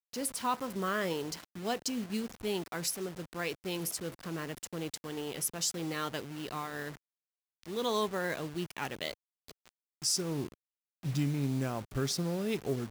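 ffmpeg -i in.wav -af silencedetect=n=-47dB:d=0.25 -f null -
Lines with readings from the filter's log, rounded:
silence_start: 6.97
silence_end: 7.63 | silence_duration: 0.66
silence_start: 9.14
silence_end: 9.48 | silence_duration: 0.35
silence_start: 9.69
silence_end: 10.02 | silence_duration: 0.33
silence_start: 10.54
silence_end: 11.03 | silence_duration: 0.49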